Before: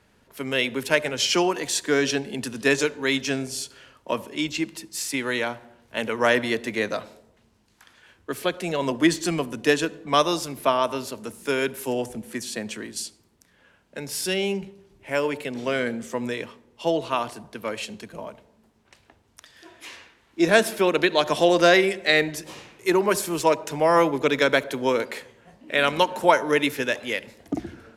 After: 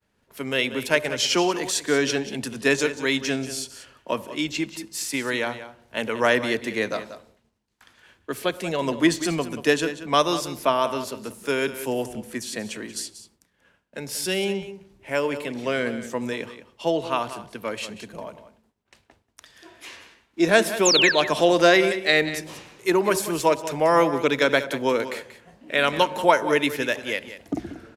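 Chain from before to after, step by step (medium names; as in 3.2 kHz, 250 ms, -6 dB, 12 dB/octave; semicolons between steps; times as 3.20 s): painted sound fall, 20.85–21.12 s, 1.5–7.7 kHz -19 dBFS; delay 185 ms -13 dB; expander -53 dBFS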